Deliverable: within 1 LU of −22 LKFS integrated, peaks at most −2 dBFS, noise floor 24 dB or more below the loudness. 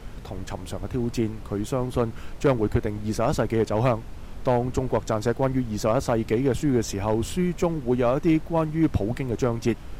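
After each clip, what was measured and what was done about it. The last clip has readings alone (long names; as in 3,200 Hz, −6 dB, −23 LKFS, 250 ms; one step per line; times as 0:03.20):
share of clipped samples 0.5%; peaks flattened at −13.0 dBFS; background noise floor −39 dBFS; target noise floor −49 dBFS; integrated loudness −25.0 LKFS; sample peak −13.0 dBFS; target loudness −22.0 LKFS
→ clipped peaks rebuilt −13 dBFS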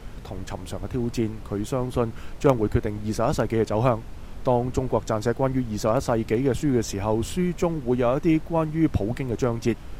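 share of clipped samples 0.0%; background noise floor −39 dBFS; target noise floor −49 dBFS
→ noise reduction from a noise print 10 dB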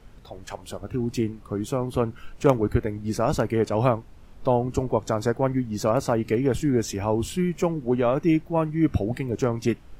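background noise floor −47 dBFS; target noise floor −49 dBFS
→ noise reduction from a noise print 6 dB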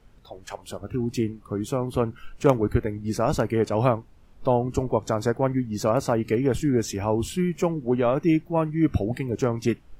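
background noise floor −51 dBFS; integrated loudness −25.0 LKFS; sample peak −4.0 dBFS; target loudness −22.0 LKFS
→ level +3 dB
brickwall limiter −2 dBFS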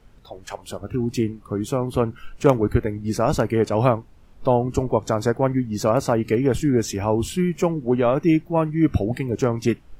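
integrated loudness −22.0 LKFS; sample peak −2.0 dBFS; background noise floor −48 dBFS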